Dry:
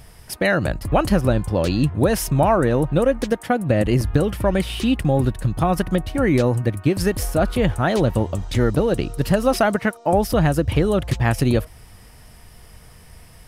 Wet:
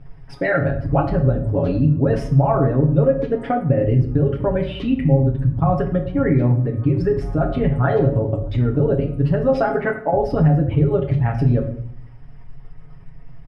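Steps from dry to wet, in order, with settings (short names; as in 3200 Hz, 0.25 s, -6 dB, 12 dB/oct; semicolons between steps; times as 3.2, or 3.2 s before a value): formant sharpening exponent 1.5; LPF 2300 Hz 12 dB/oct; comb 7.2 ms, depth 92%; compressor 3:1, threshold -14 dBFS, peak gain reduction 6 dB; shoebox room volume 84 m³, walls mixed, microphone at 0.53 m; gain -1.5 dB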